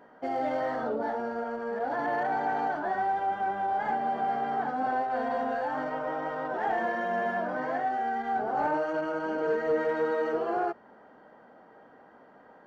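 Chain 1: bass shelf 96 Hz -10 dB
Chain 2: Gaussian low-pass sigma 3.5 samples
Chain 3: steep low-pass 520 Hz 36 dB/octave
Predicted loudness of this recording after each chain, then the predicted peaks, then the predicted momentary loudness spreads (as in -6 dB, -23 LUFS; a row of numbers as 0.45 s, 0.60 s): -30.5 LUFS, -30.5 LUFS, -36.5 LUFS; -18.5 dBFS, -19.0 dBFS, -20.0 dBFS; 4 LU, 5 LU, 10 LU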